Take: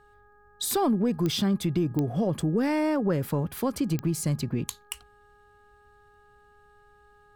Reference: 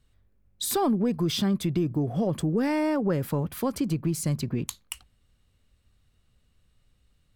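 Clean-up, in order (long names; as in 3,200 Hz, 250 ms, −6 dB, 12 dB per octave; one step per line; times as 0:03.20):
click removal
hum removal 413.5 Hz, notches 4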